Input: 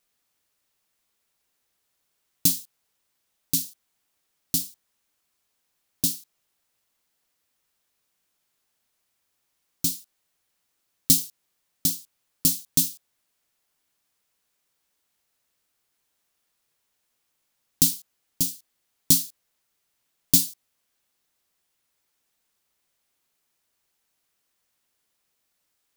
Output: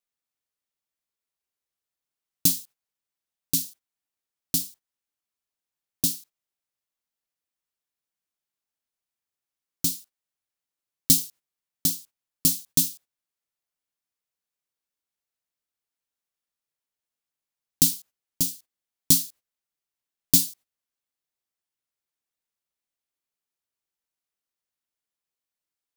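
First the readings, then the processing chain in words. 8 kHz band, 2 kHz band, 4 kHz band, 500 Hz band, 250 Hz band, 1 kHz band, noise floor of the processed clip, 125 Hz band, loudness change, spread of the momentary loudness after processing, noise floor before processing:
0.0 dB, +0.5 dB, 0.0 dB, +0.5 dB, 0.0 dB, n/a, under -85 dBFS, 0.0 dB, 0.0 dB, 16 LU, -76 dBFS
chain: gate -45 dBFS, range -15 dB

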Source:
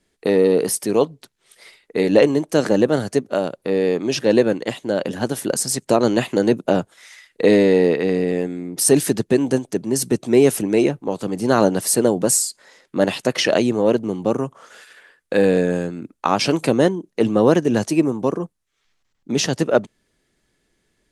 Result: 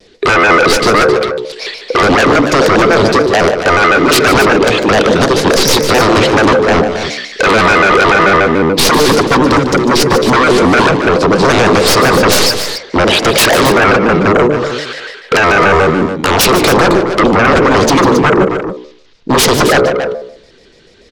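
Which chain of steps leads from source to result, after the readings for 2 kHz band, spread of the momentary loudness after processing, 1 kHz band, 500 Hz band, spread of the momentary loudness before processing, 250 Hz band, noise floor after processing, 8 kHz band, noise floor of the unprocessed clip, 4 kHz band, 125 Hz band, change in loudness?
+19.0 dB, 8 LU, +17.5 dB, +8.0 dB, 9 LU, +7.0 dB, -43 dBFS, +6.0 dB, -69 dBFS, +15.5 dB, +10.0 dB, +10.0 dB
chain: tracing distortion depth 0.17 ms; bell 450 Hz +12 dB 0.48 oct; de-hum 68.07 Hz, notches 36; in parallel at +1 dB: compressor, threshold -21 dBFS, peak gain reduction 19 dB; on the sum: limiter -4.5 dBFS, peak gain reduction 10 dB; synth low-pass 4500 Hz, resonance Q 2.3; sine folder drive 14 dB, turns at -0.5 dBFS; on a send: loudspeakers at several distances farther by 51 m -11 dB, 92 m -10 dB; on the sum: shaped vibrato square 6.9 Hz, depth 160 cents; gain -5 dB

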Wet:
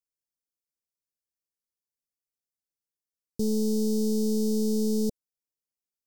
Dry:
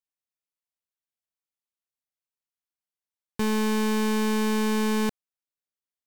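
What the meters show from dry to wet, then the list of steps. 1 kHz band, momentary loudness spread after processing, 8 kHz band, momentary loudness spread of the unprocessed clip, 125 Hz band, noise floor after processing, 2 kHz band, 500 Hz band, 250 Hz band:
under -25 dB, 6 LU, -0.5 dB, 6 LU, -1.0 dB, under -85 dBFS, under -40 dB, 0.0 dB, -1.0 dB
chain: Chebyshev band-stop 520–4900 Hz, order 3

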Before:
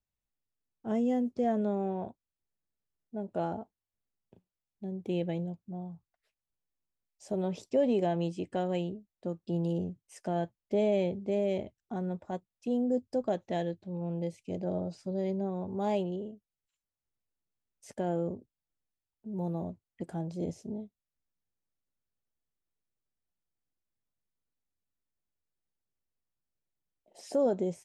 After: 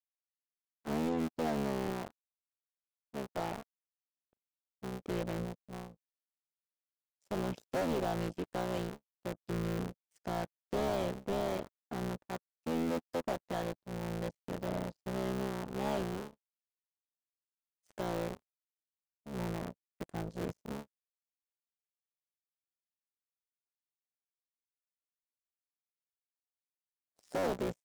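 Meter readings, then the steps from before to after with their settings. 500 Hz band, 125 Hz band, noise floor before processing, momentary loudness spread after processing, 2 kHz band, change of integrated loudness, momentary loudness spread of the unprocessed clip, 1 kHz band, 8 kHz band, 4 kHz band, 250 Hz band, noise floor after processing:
-5.5 dB, -3.5 dB, under -85 dBFS, 12 LU, +5.0 dB, -4.5 dB, 13 LU, -1.0 dB, n/a, +2.5 dB, -5.5 dB, under -85 dBFS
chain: cycle switcher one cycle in 3, muted; soft clip -33.5 dBFS, distortion -7 dB; power-law curve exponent 3; gain +5.5 dB

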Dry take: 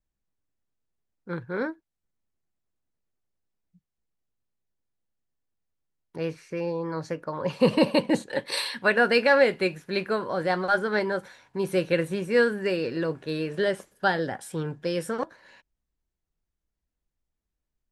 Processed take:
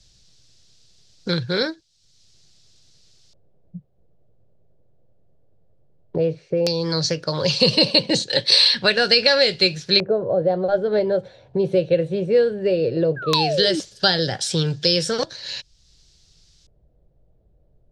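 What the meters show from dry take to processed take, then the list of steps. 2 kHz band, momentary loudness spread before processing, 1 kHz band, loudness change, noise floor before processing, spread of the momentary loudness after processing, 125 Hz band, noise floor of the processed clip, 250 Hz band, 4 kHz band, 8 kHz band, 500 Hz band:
+1.5 dB, 13 LU, +1.0 dB, +7.0 dB, -85 dBFS, 11 LU, +8.5 dB, -60 dBFS, +3.5 dB, +17.5 dB, +12.0 dB, +5.5 dB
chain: graphic EQ 125/250/1000/2000/4000/8000 Hz +7/-10/-11/-5/+9/+6 dB; painted sound fall, 13.16–13.8, 290–1700 Hz -32 dBFS; LFO low-pass square 0.15 Hz 600–5300 Hz; maximiser +7 dB; three-band squash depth 70%

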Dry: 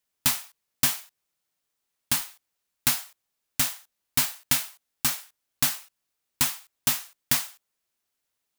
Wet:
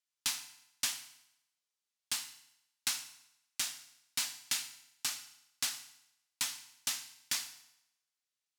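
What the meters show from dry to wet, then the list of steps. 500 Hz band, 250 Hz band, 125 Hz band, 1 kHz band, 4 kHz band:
-16.0 dB, -20.5 dB, -24.5 dB, -13.0 dB, -6.5 dB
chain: band-pass 6000 Hz, Q 0.76; tilt -2.5 dB/oct; FDN reverb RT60 0.85 s, low-frequency decay 0.9×, high-frequency decay 0.95×, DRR 8.5 dB

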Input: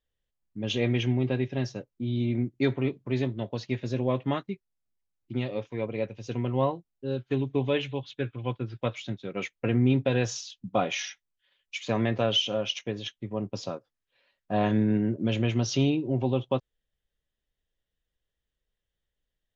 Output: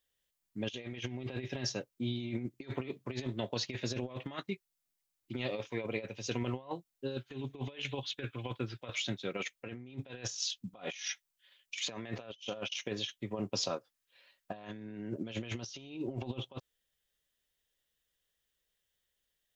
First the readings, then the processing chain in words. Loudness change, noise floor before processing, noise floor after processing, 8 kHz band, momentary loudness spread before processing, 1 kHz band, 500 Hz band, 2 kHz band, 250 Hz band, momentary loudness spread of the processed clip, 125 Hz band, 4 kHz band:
-10.5 dB, -85 dBFS, -84 dBFS, n/a, 11 LU, -11.5 dB, -11.0 dB, -6.5 dB, -12.0 dB, 8 LU, -12.5 dB, -6.0 dB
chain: tilt +2.5 dB/oct; negative-ratio compressor -35 dBFS, ratio -0.5; gain -3 dB

